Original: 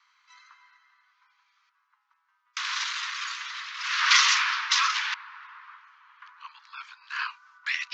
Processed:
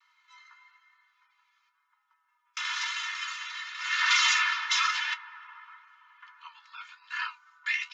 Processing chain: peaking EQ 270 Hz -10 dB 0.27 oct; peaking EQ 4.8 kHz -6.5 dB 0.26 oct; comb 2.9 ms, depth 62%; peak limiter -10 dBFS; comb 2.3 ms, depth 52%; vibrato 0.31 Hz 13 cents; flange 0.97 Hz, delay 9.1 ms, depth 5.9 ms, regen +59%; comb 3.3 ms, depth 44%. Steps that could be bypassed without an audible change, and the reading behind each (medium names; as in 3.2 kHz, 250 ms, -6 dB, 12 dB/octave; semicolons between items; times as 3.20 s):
peaking EQ 270 Hz: input has nothing below 810 Hz